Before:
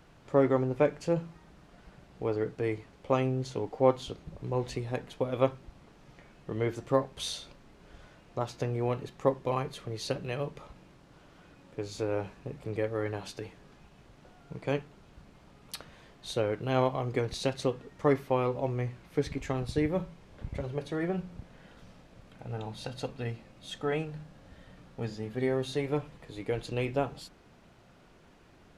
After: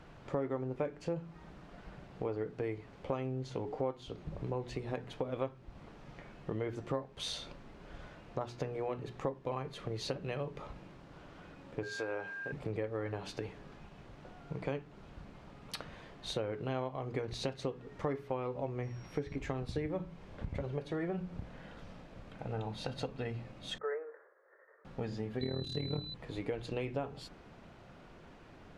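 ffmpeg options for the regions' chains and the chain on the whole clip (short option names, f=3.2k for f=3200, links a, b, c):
-filter_complex "[0:a]asettb=1/sr,asplit=3[a][b][c];[a]atrim=end=11.834[d];[b]atrim=start=11.83:end=12.52,asetpts=PTS-STARTPTS,afade=t=in:d=0.004:c=qsin,afade=t=out:st=0.686:d=0.004:c=qsin,highpass=f=670:p=1,aeval=exprs='val(0)+0.00794*sin(2*PI*1600*n/s)':c=same[e];[c]atrim=start=12.516[f];[d][e]acrossfade=d=0.004:c1=hsin:c2=qsin[g];[g][f]acrossfade=d=0.004:c1=qsin:c2=hsin,asettb=1/sr,asplit=3[h][i][j];[h]atrim=end=18.834[k];[i]atrim=start=18.83:end=19.36,asetpts=PTS-STARTPTS,afade=t=in:d=0.004:c=qsin,afade=t=out:st=0.526:d=0.004:c=qsin,acrossover=split=3000[l][m];[m]acompressor=threshold=-53dB:ratio=4:attack=1:release=60[n];[l][n]amix=inputs=2:normalize=0,aeval=exprs='val(0)+0.00112*sin(2*PI*5600*n/s)':c=same[o];[j]atrim=start=19.356[p];[k][o]acrossfade=d=0.004:c1=hsin:c2=qsin[q];[q][p]acrossfade=d=0.004:c1=qsin:c2=hsin,asettb=1/sr,asplit=3[r][s][t];[r]atrim=end=23.784[u];[s]atrim=start=23.78:end=24.85,asetpts=PTS-STARTPTS,afade=t=in:d=0.004:c=qsin,afade=t=out:st=1.066:d=0.004:c=qsin,agate=range=-33dB:threshold=-49dB:ratio=3:release=100:detection=peak,asuperpass=centerf=860:order=20:qfactor=0.55,equalizer=f=760:w=2.1:g=-14[v];[t]atrim=start=24.846[w];[u][v]acrossfade=d=0.004:c1=hsin:c2=qsin[x];[x][w]acrossfade=d=0.004:c1=qsin:c2=hsin,asettb=1/sr,asplit=3[y][z][aa];[y]atrim=end=25.414[ab];[z]atrim=start=25.41:end=26.14,asetpts=PTS-STARTPTS,afade=t=in:d=0.004:c=qsin,afade=t=out:st=0.726:d=0.004:c=qsin,bass=f=250:g=11,treble=f=4k:g=3,tremolo=f=38:d=0.889,aeval=exprs='val(0)+0.02*sin(2*PI*4000*n/s)':c=same[ac];[aa]atrim=start=26.136[ad];[ab][ac]acrossfade=d=0.004:c1=hsin:c2=qsin[ae];[ae][ad]acrossfade=d=0.004:c1=qsin:c2=hsin,aemphasis=mode=reproduction:type=50kf,bandreject=f=60:t=h:w=6,bandreject=f=120:t=h:w=6,bandreject=f=180:t=h:w=6,bandreject=f=240:t=h:w=6,bandreject=f=300:t=h:w=6,bandreject=f=360:t=h:w=6,bandreject=f=420:t=h:w=6,acompressor=threshold=-39dB:ratio=4,volume=4dB"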